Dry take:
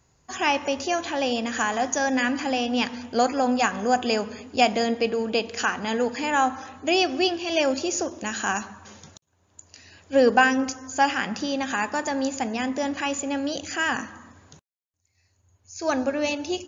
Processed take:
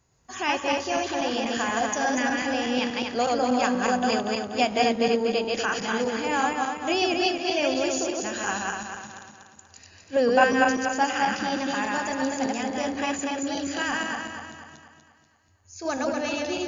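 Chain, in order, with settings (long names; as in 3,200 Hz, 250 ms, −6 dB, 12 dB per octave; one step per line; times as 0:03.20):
feedback delay that plays each chunk backwards 121 ms, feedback 67%, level −1 dB
level −4.5 dB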